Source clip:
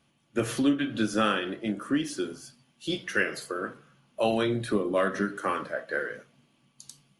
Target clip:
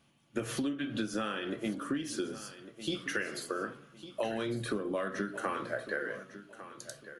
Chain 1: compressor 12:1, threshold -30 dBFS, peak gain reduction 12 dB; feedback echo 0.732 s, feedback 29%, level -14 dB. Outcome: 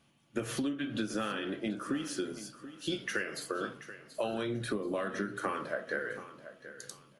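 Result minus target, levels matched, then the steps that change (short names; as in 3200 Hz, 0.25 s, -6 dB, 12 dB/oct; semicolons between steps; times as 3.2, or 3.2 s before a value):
echo 0.421 s early
change: feedback echo 1.153 s, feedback 29%, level -14 dB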